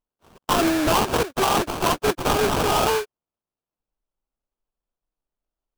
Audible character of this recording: aliases and images of a low sample rate 2000 Hz, jitter 20%

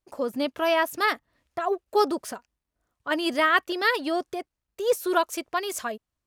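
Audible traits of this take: noise floor -86 dBFS; spectral tilt -1.5 dB/oct

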